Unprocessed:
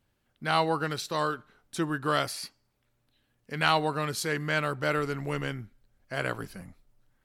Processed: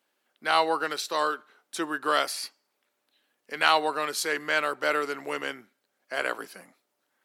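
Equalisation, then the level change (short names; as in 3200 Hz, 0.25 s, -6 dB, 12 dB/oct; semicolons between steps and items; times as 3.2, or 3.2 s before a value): Bessel high-pass 430 Hz, order 4; +3.5 dB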